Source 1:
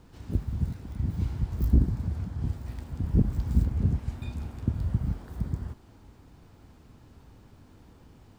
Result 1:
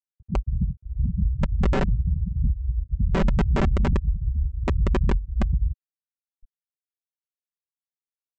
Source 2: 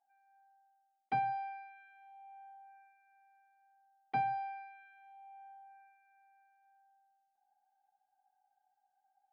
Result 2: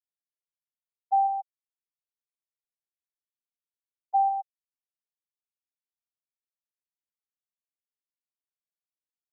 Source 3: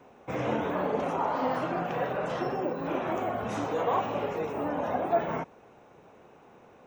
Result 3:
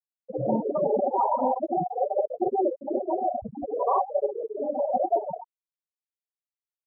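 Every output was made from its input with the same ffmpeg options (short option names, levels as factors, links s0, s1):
-filter_complex "[0:a]asubboost=boost=4:cutoff=79,asplit=2[s0][s1];[s1]asplit=4[s2][s3][s4][s5];[s2]adelay=190,afreqshift=41,volume=0.0708[s6];[s3]adelay=380,afreqshift=82,volume=0.0427[s7];[s4]adelay=570,afreqshift=123,volume=0.0254[s8];[s5]adelay=760,afreqshift=164,volume=0.0153[s9];[s6][s7][s8][s9]amix=inputs=4:normalize=0[s10];[s0][s10]amix=inputs=2:normalize=0,afftfilt=real='re*gte(hypot(re,im),0.141)':imag='im*gte(hypot(re,im),0.141)':win_size=1024:overlap=0.75,aresample=16000,aeval=exprs='(mod(5.31*val(0)+1,2)-1)/5.31':c=same,aresample=44100,aecho=1:1:5.2:0.57,acrossover=split=3000[s11][s12];[s12]acompressor=threshold=0.00794:ratio=4:attack=1:release=60[s13];[s11][s13]amix=inputs=2:normalize=0,alimiter=limit=0.075:level=0:latency=1:release=11,volume=2.37"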